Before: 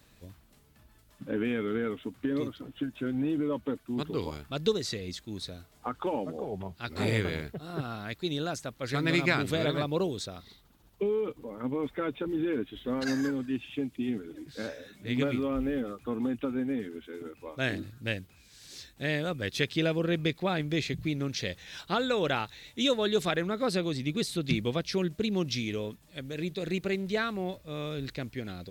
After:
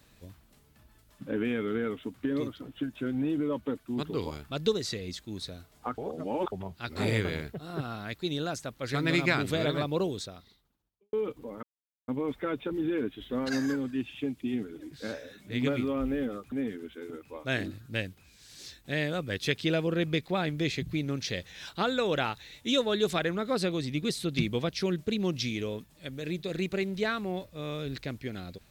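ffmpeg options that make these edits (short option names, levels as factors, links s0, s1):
-filter_complex "[0:a]asplit=6[s0][s1][s2][s3][s4][s5];[s0]atrim=end=5.982[s6];[s1]atrim=start=5.978:end=6.522,asetpts=PTS-STARTPTS,areverse[s7];[s2]atrim=start=6.518:end=11.13,asetpts=PTS-STARTPTS,afade=t=out:st=3.632:d=0.98:c=qua[s8];[s3]atrim=start=11.13:end=11.63,asetpts=PTS-STARTPTS,afade=t=in:d=0.004:c=hsin,afade=t=out:st=0.496:d=0.004:c=hsin,apad=pad_dur=0.45[s9];[s4]atrim=start=11.63:end=16.072,asetpts=PTS-STARTPTS,afade=t=in:d=0.004:c=hsin[s10];[s5]atrim=start=16.638[s11];[s6][s7]acrossfade=d=0.004:c1=hsin:c2=hsin[s12];[s8][s9][s10]concat=n=3:v=0:a=1[s13];[s12][s13]acrossfade=d=0.004:c1=hsin:c2=hsin[s14];[s14][s11]acrossfade=d=0.004:c1=hsin:c2=hsin"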